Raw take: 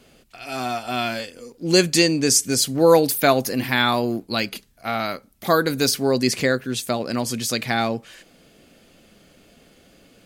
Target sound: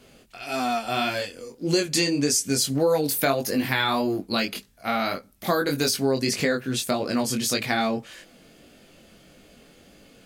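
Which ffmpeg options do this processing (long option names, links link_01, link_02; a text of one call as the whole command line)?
ffmpeg -i in.wav -af "flanger=delay=19.5:depth=3.1:speed=1.7,acompressor=threshold=-23dB:ratio=4,volume=3.5dB" out.wav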